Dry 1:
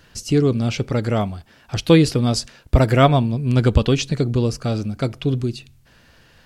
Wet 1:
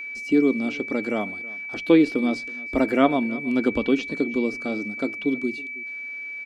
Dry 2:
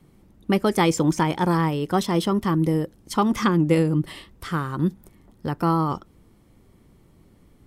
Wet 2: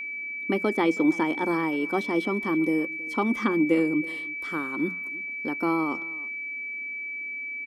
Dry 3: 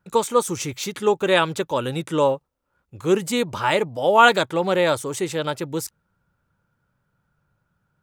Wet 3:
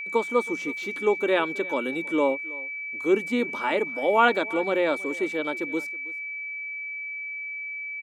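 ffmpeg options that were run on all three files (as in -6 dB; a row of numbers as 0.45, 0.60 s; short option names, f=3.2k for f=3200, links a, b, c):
-filter_complex "[0:a]acrossover=split=3600[a][b];[b]acompressor=threshold=-43dB:ratio=4:attack=1:release=60[c];[a][c]amix=inputs=2:normalize=0,lowshelf=f=180:t=q:w=3:g=-13.5,bandreject=f=60:t=h:w=6,bandreject=f=120:t=h:w=6,bandreject=f=180:t=h:w=6,asplit=2[d][e];[e]aecho=0:1:322:0.0891[f];[d][f]amix=inputs=2:normalize=0,aeval=exprs='val(0)+0.0562*sin(2*PI*2300*n/s)':c=same,volume=-6.5dB"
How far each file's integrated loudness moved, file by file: -4.5, -4.0, -5.0 LU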